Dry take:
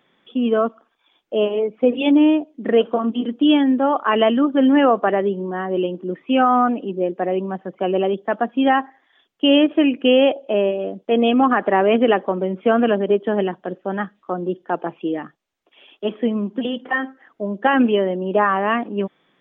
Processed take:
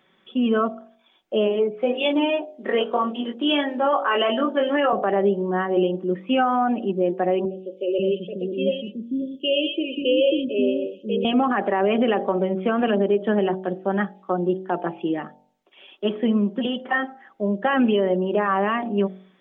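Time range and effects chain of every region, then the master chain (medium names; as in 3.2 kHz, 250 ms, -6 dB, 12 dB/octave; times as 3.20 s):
1.75–4.93 s: high-pass 380 Hz + doubling 21 ms -3 dB
7.45–11.25 s: Chebyshev band-stop 550–2600 Hz, order 5 + three bands offset in time mids, highs, lows 120/540 ms, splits 330/3100 Hz
whole clip: comb 5.3 ms, depth 41%; de-hum 46.95 Hz, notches 19; peak limiter -11.5 dBFS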